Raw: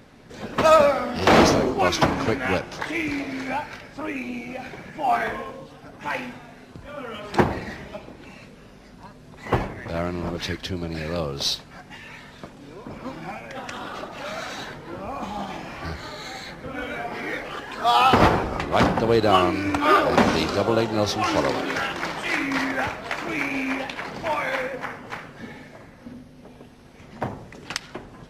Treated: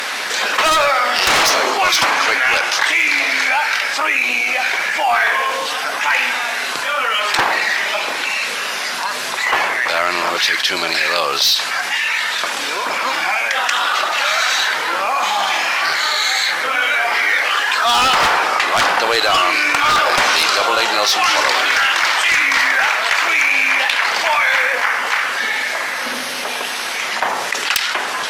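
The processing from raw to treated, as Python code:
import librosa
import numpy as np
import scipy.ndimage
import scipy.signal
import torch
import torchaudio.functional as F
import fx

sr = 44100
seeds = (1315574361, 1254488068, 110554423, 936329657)

y = scipy.signal.sosfilt(scipy.signal.butter(2, 1300.0, 'highpass', fs=sr, output='sos'), x)
y = fx.fold_sine(y, sr, drive_db=15, ceiling_db=-3.5)
y = fx.env_flatten(y, sr, amount_pct=70)
y = y * librosa.db_to_amplitude(-7.0)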